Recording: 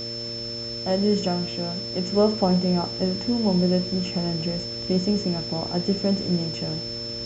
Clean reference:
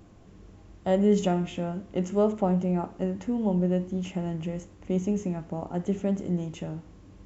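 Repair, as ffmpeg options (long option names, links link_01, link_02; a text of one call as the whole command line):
ffmpeg -i in.wav -af "bandreject=frequency=116.1:width_type=h:width=4,bandreject=frequency=232.2:width_type=h:width=4,bandreject=frequency=348.3:width_type=h:width=4,bandreject=frequency=464.4:width_type=h:width=4,bandreject=frequency=580.5:width_type=h:width=4,bandreject=frequency=5300:width=30,afwtdn=0.0071,asetnsamples=nb_out_samples=441:pad=0,asendcmd='2.07 volume volume -4dB',volume=0dB" out.wav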